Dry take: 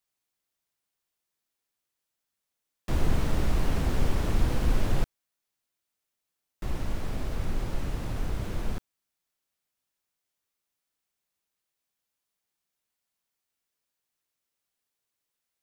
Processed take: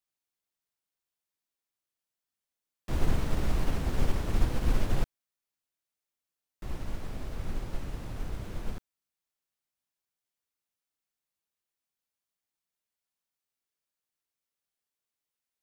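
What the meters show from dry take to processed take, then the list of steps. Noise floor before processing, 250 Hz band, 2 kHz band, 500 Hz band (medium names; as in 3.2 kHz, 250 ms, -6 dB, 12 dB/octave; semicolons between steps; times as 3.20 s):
-85 dBFS, -3.5 dB, -3.0 dB, -3.5 dB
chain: upward expansion 1.5:1, over -29 dBFS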